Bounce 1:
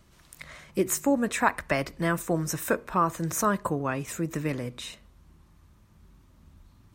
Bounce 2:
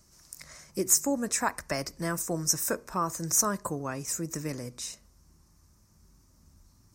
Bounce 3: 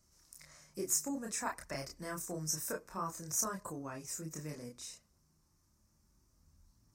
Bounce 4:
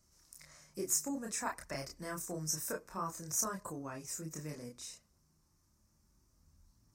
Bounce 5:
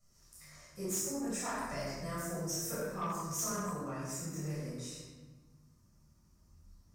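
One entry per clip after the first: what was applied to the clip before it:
resonant high shelf 4.3 kHz +8.5 dB, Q 3; trim -5 dB
chorus voices 2, 0.29 Hz, delay 29 ms, depth 3.9 ms; trim -6.5 dB
no audible change
simulated room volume 850 m³, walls mixed, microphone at 6.4 m; saturation -21 dBFS, distortion -17 dB; trim -8.5 dB

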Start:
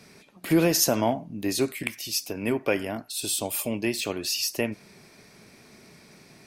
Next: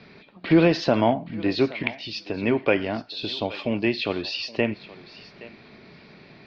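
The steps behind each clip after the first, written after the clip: steep low-pass 4.4 kHz 48 dB/octave; thinning echo 821 ms, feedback 15%, high-pass 420 Hz, level -17 dB; trim +4 dB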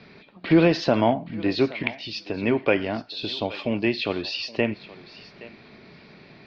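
no audible change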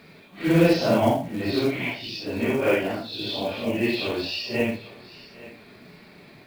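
phase randomisation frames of 200 ms; companded quantiser 6-bit; on a send at -21.5 dB: reverberation RT60 1.1 s, pre-delay 3 ms

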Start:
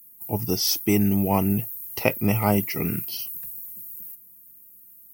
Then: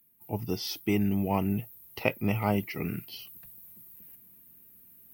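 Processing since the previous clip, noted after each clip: resonant high shelf 4.9 kHz -9.5 dB, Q 1.5; reverse; upward compressor, threshold -38 dBFS; reverse; trim -6 dB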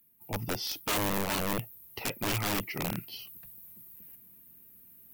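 integer overflow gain 24.5 dB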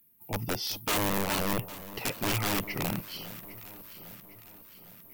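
echo whose repeats swap between lows and highs 403 ms, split 1.1 kHz, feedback 71%, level -14 dB; trim +1.5 dB

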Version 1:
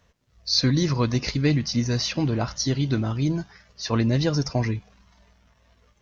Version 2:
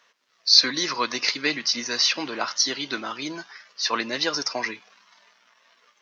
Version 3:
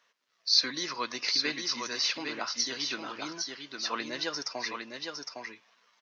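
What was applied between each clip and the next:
Bessel high-pass 420 Hz, order 4; high-order bell 2.4 kHz +8.5 dB 2.9 oct; trim -1 dB
delay 809 ms -5 dB; trim -8.5 dB

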